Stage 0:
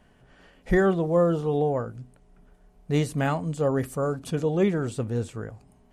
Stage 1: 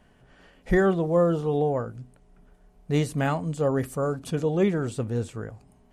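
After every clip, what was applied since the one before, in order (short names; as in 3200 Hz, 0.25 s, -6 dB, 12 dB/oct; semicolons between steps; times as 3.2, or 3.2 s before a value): nothing audible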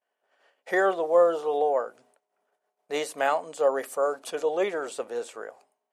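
expander -45 dBFS; ladder high-pass 450 Hz, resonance 30%; gain +8.5 dB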